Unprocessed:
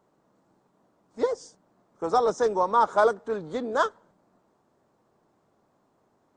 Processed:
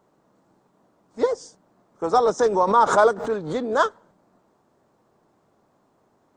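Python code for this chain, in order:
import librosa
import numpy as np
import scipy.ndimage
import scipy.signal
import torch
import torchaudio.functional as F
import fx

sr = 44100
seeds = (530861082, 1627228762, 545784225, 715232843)

y = fx.pre_swell(x, sr, db_per_s=95.0, at=(2.39, 3.78))
y = y * librosa.db_to_amplitude(4.0)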